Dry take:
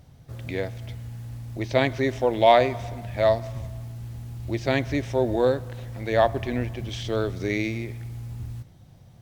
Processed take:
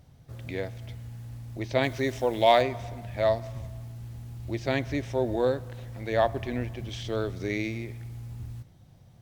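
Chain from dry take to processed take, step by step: 1.82–2.61 s: treble shelf 5.7 kHz -> 4.3 kHz +9.5 dB; trim -4 dB

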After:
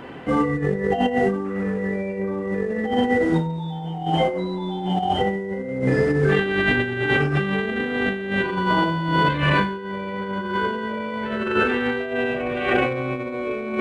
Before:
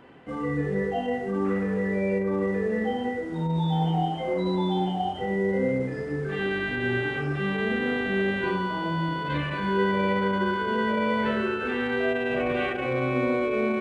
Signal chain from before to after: compressor with a negative ratio -30 dBFS, ratio -0.5; trim +8.5 dB

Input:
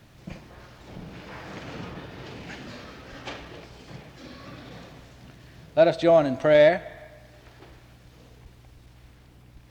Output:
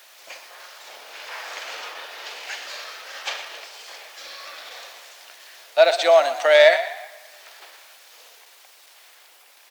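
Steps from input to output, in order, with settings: high-pass 530 Hz 24 dB/octave; tilt EQ +3 dB/octave; on a send: frequency-shifting echo 120 ms, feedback 35%, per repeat +39 Hz, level -13 dB; on the sum: trim +6 dB

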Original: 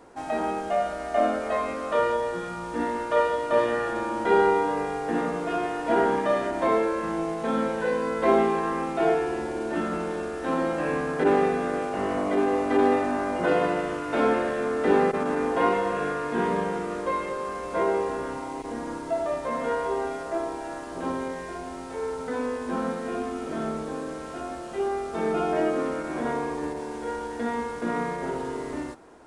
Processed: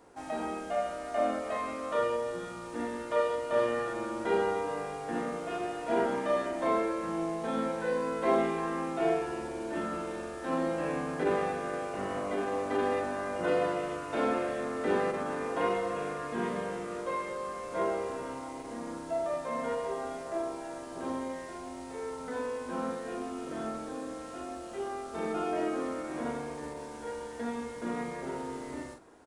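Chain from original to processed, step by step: treble shelf 5.6 kHz +5 dB; doubling 42 ms -5 dB; trim -7.5 dB

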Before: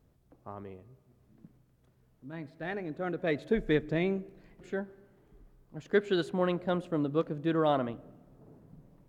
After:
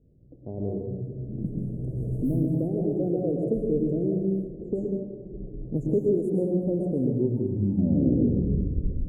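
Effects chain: tape stop on the ending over 2.36 s; recorder AGC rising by 16 dB/s; inverse Chebyshev band-stop 1.1–4.7 kHz, stop band 50 dB; in parallel at -2 dB: compression, threshold -38 dBFS, peak gain reduction 16 dB; on the sum: reverberation RT60 1.1 s, pre-delay 102 ms, DRR 0 dB; level-controlled noise filter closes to 850 Hz, open at -21.5 dBFS; on a send: feedback echo behind a low-pass 1099 ms, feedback 62%, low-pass 500 Hz, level -20.5 dB

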